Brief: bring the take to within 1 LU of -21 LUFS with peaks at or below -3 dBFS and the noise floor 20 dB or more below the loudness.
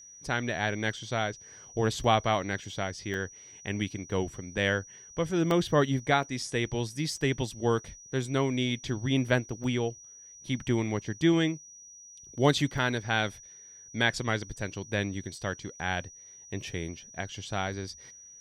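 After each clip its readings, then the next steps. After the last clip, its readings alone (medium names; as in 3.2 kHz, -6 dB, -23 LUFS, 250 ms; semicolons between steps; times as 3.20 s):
dropouts 6; longest dropout 1.4 ms; steady tone 5.8 kHz; tone level -48 dBFS; loudness -30.0 LUFS; peak level -8.5 dBFS; loudness target -21.0 LUFS
-> interpolate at 2.04/3.14/5.51/6.23/9.64/12.78 s, 1.4 ms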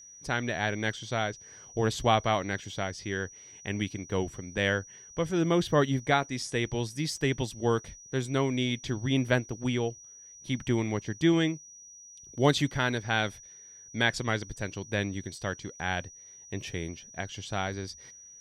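dropouts 0; steady tone 5.8 kHz; tone level -48 dBFS
-> band-stop 5.8 kHz, Q 30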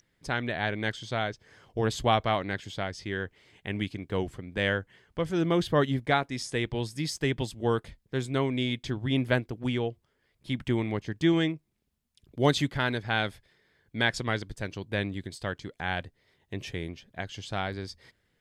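steady tone not found; loudness -30.0 LUFS; peak level -8.5 dBFS; loudness target -21.0 LUFS
-> trim +9 dB; peak limiter -3 dBFS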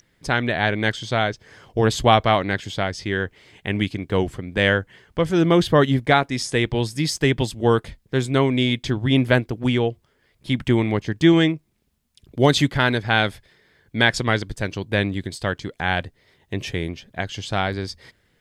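loudness -21.5 LUFS; peak level -3.0 dBFS; noise floor -65 dBFS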